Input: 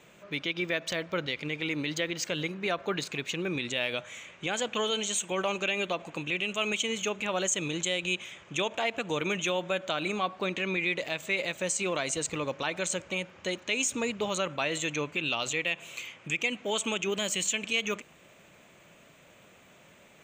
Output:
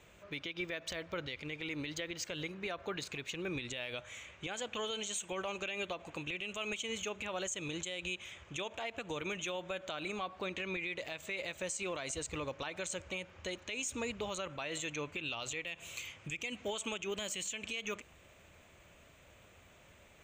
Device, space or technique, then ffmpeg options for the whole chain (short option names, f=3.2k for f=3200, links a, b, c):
car stereo with a boomy subwoofer: -filter_complex "[0:a]asettb=1/sr,asplit=3[a][b][c];[a]atrim=end=15.664[d];[b]atrim=start=15.66:end=16.68,asetpts=PTS-STARTPTS,afade=t=in:d=0.004:c=qsin,afade=t=out:st=1.016:d=0.004:c=qsin,bass=f=250:g=4,treble=f=4k:g=5[e];[c]atrim=start=16.676[f];[d][e]acrossfade=d=0.004:c1=hsin:c2=qsin[g];[g][f]acrossfade=d=0.004:c1=qsin:c2=hsin,lowshelf=f=110:t=q:w=1.5:g=12,alimiter=limit=-24dB:level=0:latency=1:release=136,volume=-4.5dB"